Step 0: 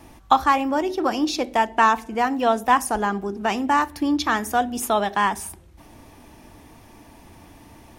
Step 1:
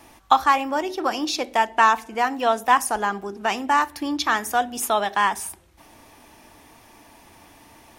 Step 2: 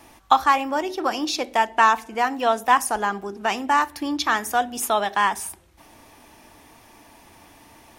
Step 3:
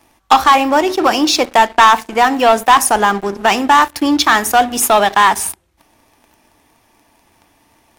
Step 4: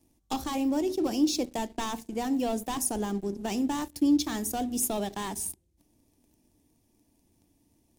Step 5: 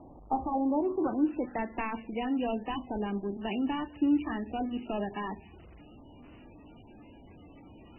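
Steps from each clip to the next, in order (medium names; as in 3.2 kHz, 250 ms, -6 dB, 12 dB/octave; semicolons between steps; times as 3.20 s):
bass shelf 380 Hz -11.5 dB; trim +2 dB
no audible change
waveshaping leveller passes 3; trim +1 dB
FFT filter 290 Hz 0 dB, 1.3 kHz -24 dB, 7.1 kHz -5 dB; trim -8 dB
jump at every zero crossing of -42.5 dBFS; low-pass sweep 780 Hz -> 3.7 kHz, 0.56–2.36 s; trim -2.5 dB; MP3 8 kbps 16 kHz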